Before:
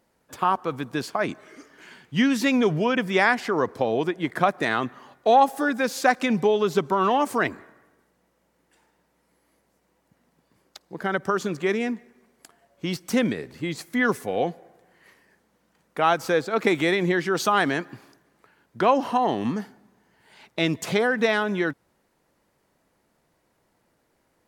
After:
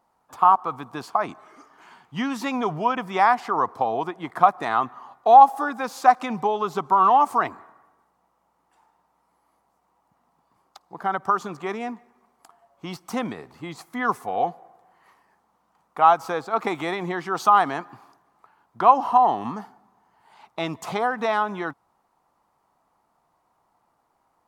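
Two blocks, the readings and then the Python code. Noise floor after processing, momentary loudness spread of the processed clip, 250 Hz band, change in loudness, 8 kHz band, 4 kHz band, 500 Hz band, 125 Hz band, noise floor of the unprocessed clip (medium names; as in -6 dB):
-70 dBFS, 16 LU, -6.5 dB, +2.0 dB, no reading, -6.5 dB, -3.5 dB, -6.5 dB, -69 dBFS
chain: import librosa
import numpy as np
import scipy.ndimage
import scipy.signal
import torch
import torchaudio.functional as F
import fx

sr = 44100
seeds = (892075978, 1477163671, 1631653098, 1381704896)

y = fx.band_shelf(x, sr, hz=950.0, db=13.5, octaves=1.1)
y = y * librosa.db_to_amplitude(-6.5)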